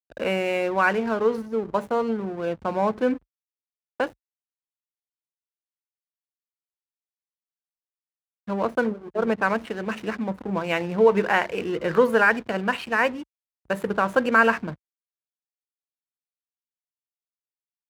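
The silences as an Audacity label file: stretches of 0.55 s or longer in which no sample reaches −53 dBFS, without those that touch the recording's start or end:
3.180000	4.000000	silence
4.130000	8.480000	silence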